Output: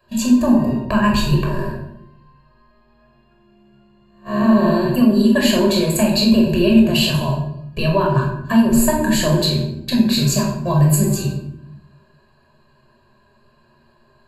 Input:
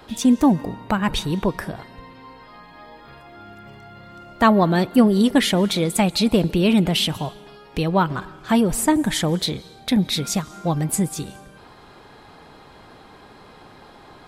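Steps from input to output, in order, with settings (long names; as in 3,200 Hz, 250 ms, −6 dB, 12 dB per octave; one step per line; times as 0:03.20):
0:01.44–0:04.89: spectrum smeared in time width 311 ms
noise gate −32 dBFS, range −18 dB
EQ curve with evenly spaced ripples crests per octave 1.4, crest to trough 15 dB
downward compressor, threshold −15 dBFS, peak gain reduction 10 dB
convolution reverb RT60 0.75 s, pre-delay 16 ms, DRR −1 dB
level −2.5 dB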